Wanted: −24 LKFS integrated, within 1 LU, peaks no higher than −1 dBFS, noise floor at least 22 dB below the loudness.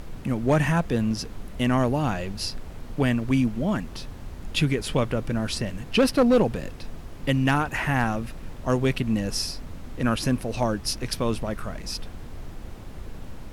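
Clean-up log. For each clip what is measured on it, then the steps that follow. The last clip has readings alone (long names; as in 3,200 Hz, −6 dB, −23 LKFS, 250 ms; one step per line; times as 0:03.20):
share of clipped samples 0.4%; peaks flattened at −13.0 dBFS; background noise floor −39 dBFS; target noise floor −48 dBFS; integrated loudness −25.5 LKFS; sample peak −13.0 dBFS; target loudness −24.0 LKFS
→ clipped peaks rebuilt −13 dBFS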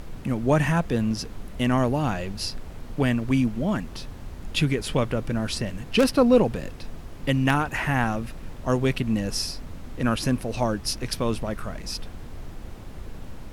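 share of clipped samples 0.0%; background noise floor −39 dBFS; target noise floor −47 dBFS
→ noise reduction from a noise print 8 dB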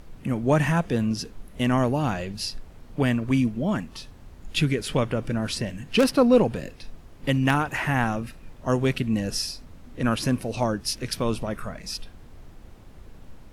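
background noise floor −47 dBFS; integrated loudness −25.0 LKFS; sample peak −5.0 dBFS; target loudness −24.0 LKFS
→ level +1 dB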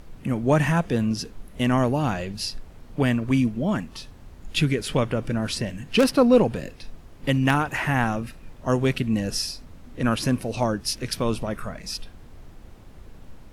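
integrated loudness −24.0 LKFS; sample peak −4.0 dBFS; background noise floor −46 dBFS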